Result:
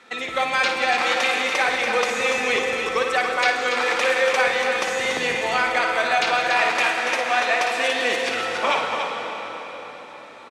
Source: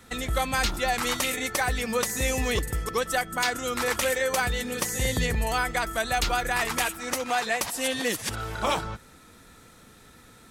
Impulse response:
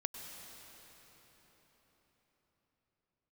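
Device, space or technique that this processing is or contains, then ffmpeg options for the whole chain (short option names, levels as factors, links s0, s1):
station announcement: -filter_complex "[0:a]highpass=410,lowpass=4200,equalizer=f=2400:t=o:w=0.23:g=6,aecho=1:1:55.39|285.7:0.447|0.447[s0];[1:a]atrim=start_sample=2205[s1];[s0][s1]afir=irnorm=-1:irlink=0,volume=2"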